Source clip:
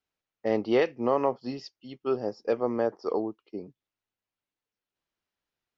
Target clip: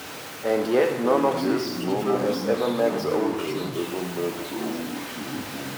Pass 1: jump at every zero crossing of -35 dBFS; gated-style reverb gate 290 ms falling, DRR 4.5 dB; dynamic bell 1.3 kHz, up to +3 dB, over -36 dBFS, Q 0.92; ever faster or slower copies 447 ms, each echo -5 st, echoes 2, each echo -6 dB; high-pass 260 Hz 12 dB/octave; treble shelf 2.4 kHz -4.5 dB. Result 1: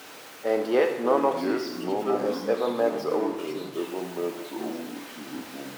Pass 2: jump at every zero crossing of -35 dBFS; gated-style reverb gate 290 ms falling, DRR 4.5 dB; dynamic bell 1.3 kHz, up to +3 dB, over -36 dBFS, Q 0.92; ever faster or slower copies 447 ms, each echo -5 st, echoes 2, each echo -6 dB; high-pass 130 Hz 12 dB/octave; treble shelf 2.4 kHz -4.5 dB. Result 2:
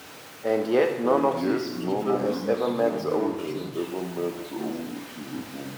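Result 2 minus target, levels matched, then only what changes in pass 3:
jump at every zero crossing: distortion -6 dB
change: jump at every zero crossing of -28 dBFS

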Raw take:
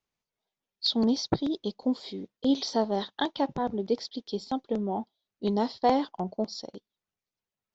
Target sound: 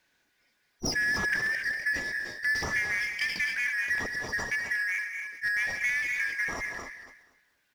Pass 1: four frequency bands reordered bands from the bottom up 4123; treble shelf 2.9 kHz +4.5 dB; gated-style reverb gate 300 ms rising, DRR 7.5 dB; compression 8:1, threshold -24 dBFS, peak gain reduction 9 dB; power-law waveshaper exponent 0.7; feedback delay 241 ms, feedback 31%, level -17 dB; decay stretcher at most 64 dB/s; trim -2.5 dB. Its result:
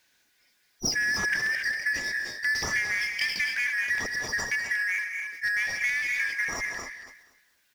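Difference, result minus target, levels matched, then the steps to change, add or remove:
8 kHz band +4.0 dB
change: treble shelf 2.9 kHz -6.5 dB

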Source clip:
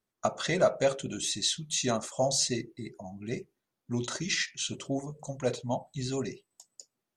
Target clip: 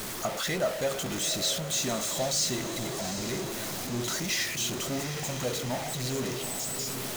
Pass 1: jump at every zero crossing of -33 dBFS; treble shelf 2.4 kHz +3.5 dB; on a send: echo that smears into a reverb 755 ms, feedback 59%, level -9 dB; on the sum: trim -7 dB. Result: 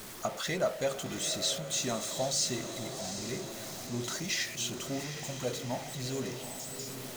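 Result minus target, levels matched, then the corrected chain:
jump at every zero crossing: distortion -6 dB
jump at every zero crossing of -24 dBFS; treble shelf 2.4 kHz +3.5 dB; on a send: echo that smears into a reverb 755 ms, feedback 59%, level -9 dB; on the sum: trim -7 dB

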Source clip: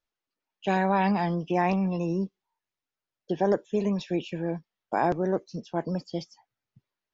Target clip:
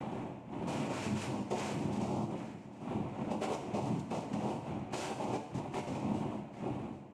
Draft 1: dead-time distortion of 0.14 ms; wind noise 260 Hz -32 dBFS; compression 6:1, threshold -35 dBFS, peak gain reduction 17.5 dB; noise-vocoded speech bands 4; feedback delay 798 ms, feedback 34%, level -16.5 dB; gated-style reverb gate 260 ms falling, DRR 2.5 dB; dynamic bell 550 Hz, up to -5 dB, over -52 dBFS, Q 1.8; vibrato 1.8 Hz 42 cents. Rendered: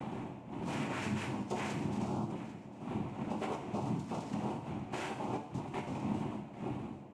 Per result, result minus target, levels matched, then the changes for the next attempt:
dead-time distortion: distortion -8 dB; 2 kHz band +3.0 dB
change: dead-time distortion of 0.29 ms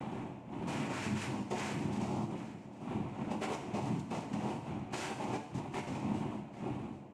2 kHz band +3.5 dB
change: dynamic bell 1.8 kHz, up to -5 dB, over -52 dBFS, Q 1.8

